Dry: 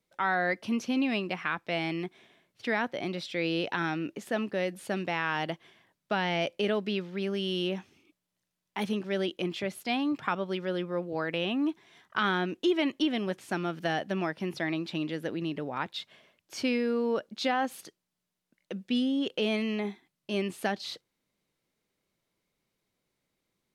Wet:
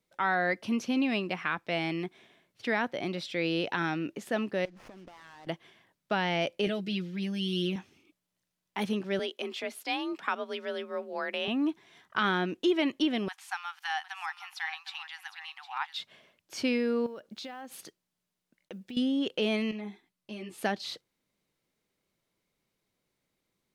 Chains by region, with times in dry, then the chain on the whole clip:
0:04.65–0:05.47: variable-slope delta modulation 32 kbit/s + downward compressor 20 to 1, threshold −44 dBFS + windowed peak hold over 9 samples
0:06.66–0:07.76: parametric band 940 Hz −11.5 dB 2.1 octaves + comb filter 6.2 ms, depth 89%
0:09.19–0:11.48: high-pass filter 490 Hz 6 dB per octave + frequency shifter +41 Hz
0:13.28–0:15.99: linear-phase brick-wall high-pass 730 Hz + single-tap delay 758 ms −12 dB
0:17.06–0:18.97: one scale factor per block 7 bits + downward compressor, threshold −39 dBFS
0:19.71–0:20.58: downward compressor 2 to 1, threshold −39 dBFS + string-ensemble chorus
whole clip: no processing

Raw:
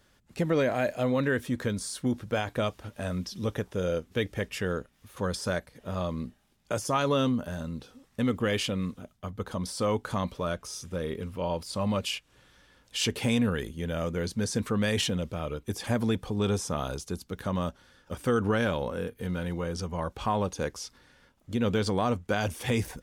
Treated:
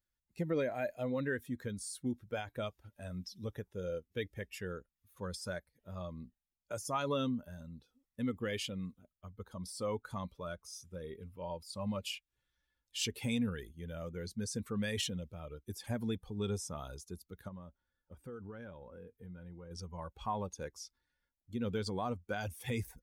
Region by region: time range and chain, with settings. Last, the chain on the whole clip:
0:17.48–0:19.71: high-shelf EQ 2,300 Hz −8.5 dB + downward compressor 3 to 1, threshold −32 dBFS
whole clip: spectral dynamics exaggerated over time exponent 1.5; high-shelf EQ 6,100 Hz +4 dB; level −6.5 dB

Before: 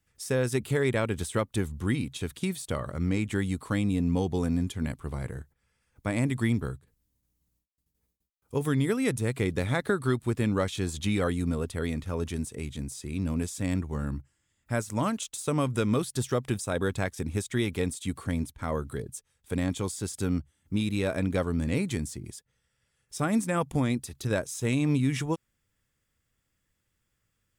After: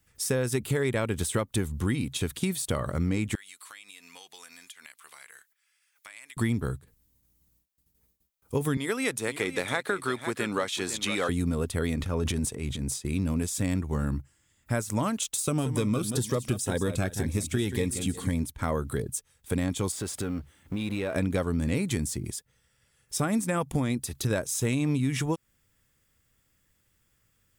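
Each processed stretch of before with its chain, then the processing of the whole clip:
0:03.35–0:06.37: Chebyshev high-pass filter 2,100 Hz + downward compressor 4 to 1, threshold −51 dBFS
0:08.77–0:11.29: meter weighting curve A + single-tap delay 505 ms −13 dB
0:11.96–0:13.05: high-shelf EQ 6,300 Hz −7 dB + transient designer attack −5 dB, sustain +9 dB + downward expander −33 dBFS
0:15.40–0:18.35: repeating echo 180 ms, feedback 32%, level −10.5 dB + phaser whose notches keep moving one way rising 2 Hz
0:19.92–0:21.16: mu-law and A-law mismatch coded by mu + bass and treble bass −6 dB, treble −9 dB + downward compressor 5 to 1, threshold −33 dBFS
whole clip: high-shelf EQ 11,000 Hz +7 dB; downward compressor 3 to 1, threshold −31 dBFS; level +6 dB

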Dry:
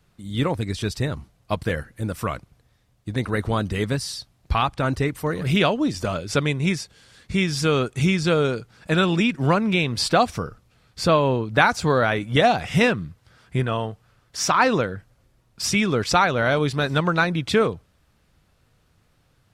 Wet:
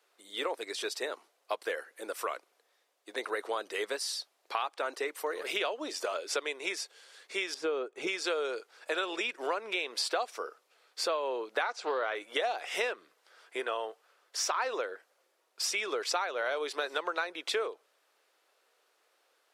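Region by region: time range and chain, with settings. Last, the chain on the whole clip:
0:07.54–0:08.07: spectral tilt −4 dB per octave + expander for the loud parts, over −21 dBFS
0:11.62–0:12.15: low-pass filter 5,700 Hz + highs frequency-modulated by the lows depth 0.22 ms
whole clip: Butterworth high-pass 390 Hz 36 dB per octave; downward compressor 4 to 1, threshold −27 dBFS; level −3 dB

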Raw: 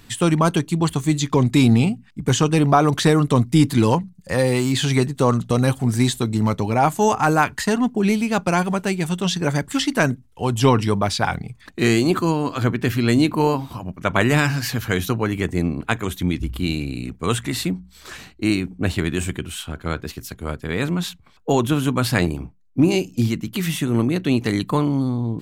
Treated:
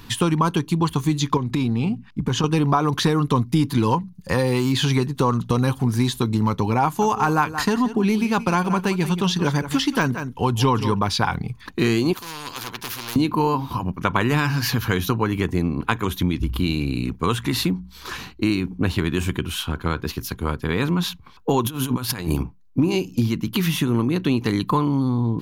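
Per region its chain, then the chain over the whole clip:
0:01.37–0:02.44: high-shelf EQ 5,500 Hz −8 dB + downward compressor 10 to 1, threshold −20 dBFS
0:06.84–0:10.99: de-essing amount 40% + single-tap delay 175 ms −13.5 dB
0:12.13–0:13.16: hard clipping −16 dBFS + every bin compressed towards the loudest bin 4 to 1
0:21.61–0:22.43: high-shelf EQ 5,500 Hz +10.5 dB + compressor whose output falls as the input rises −25 dBFS, ratio −0.5
whole clip: thirty-one-band graphic EQ 630 Hz −9 dB, 1,000 Hz +7 dB, 2,000 Hz −4 dB, 8,000 Hz −12 dB; downward compressor 3 to 1, threshold −24 dBFS; level +5.5 dB

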